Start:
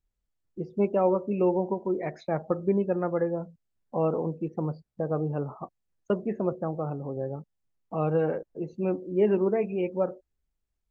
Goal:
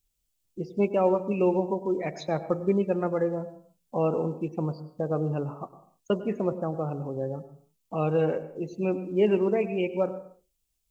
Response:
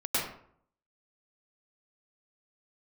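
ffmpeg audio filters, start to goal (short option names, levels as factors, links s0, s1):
-filter_complex "[0:a]aexciter=amount=2.9:drive=6.3:freq=2500,asplit=2[s0][s1];[1:a]atrim=start_sample=2205,afade=t=out:st=0.39:d=0.01,atrim=end_sample=17640[s2];[s1][s2]afir=irnorm=-1:irlink=0,volume=0.0794[s3];[s0][s3]amix=inputs=2:normalize=0"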